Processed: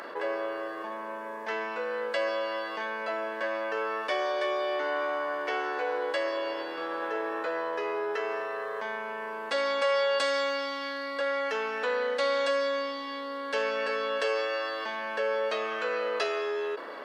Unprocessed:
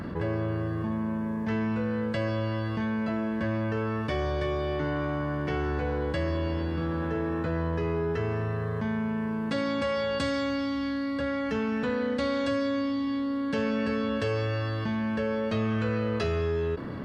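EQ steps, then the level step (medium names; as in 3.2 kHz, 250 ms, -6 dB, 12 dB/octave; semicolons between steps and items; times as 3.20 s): high-pass 480 Hz 24 dB/octave; +4.0 dB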